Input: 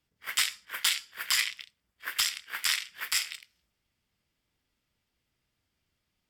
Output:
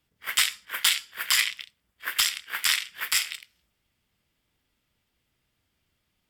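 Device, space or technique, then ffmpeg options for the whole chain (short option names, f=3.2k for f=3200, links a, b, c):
exciter from parts: -filter_complex "[0:a]asplit=2[a][b];[b]highpass=f=3.5k:w=0.5412,highpass=f=3.5k:w=1.3066,asoftclip=type=tanh:threshold=-21.5dB,highpass=f=2.5k:w=0.5412,highpass=f=2.5k:w=1.3066,volume=-11.5dB[c];[a][c]amix=inputs=2:normalize=0,volume=4.5dB"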